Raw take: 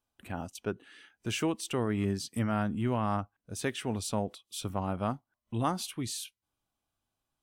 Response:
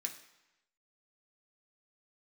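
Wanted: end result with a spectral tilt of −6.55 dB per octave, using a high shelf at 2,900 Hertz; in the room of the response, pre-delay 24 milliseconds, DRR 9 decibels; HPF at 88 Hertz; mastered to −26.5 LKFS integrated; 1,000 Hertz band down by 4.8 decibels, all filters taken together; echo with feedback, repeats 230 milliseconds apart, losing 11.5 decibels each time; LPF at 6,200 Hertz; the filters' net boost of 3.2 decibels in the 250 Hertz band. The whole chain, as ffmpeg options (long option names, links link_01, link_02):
-filter_complex "[0:a]highpass=88,lowpass=6200,equalizer=frequency=250:width_type=o:gain=4.5,equalizer=frequency=1000:width_type=o:gain=-6,highshelf=frequency=2900:gain=-5.5,aecho=1:1:230|460|690:0.266|0.0718|0.0194,asplit=2[link_01][link_02];[1:a]atrim=start_sample=2205,adelay=24[link_03];[link_02][link_03]afir=irnorm=-1:irlink=0,volume=-7.5dB[link_04];[link_01][link_04]amix=inputs=2:normalize=0,volume=6dB"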